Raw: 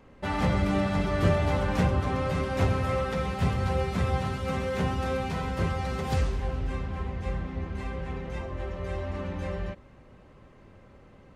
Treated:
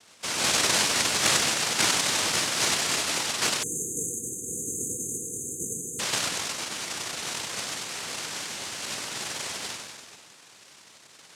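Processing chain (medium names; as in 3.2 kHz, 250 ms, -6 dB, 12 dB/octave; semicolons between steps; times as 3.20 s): bucket-brigade echo 96 ms, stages 2048, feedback 66%, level -4.5 dB; noise-vocoded speech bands 1; spectral selection erased 3.63–6.00 s, 510–6200 Hz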